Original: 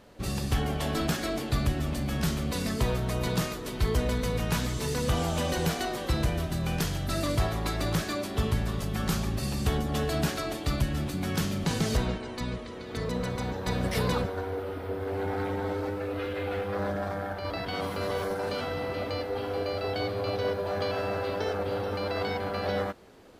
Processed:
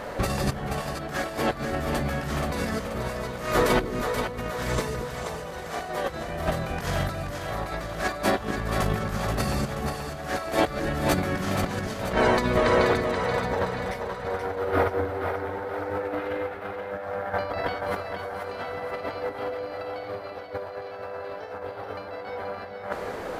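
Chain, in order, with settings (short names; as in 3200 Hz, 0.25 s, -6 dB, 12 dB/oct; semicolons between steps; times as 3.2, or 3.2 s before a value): band shelf 1000 Hz +8.5 dB 2.5 oct; negative-ratio compressor -33 dBFS, ratio -0.5; split-band echo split 420 Hz, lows 0.223 s, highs 0.48 s, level -6 dB; gain +5 dB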